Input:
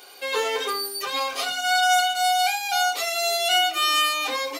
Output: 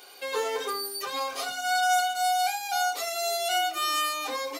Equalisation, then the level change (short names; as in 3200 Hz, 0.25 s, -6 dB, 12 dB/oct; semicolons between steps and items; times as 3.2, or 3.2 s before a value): dynamic EQ 2800 Hz, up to -7 dB, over -37 dBFS, Q 1.1; -3.0 dB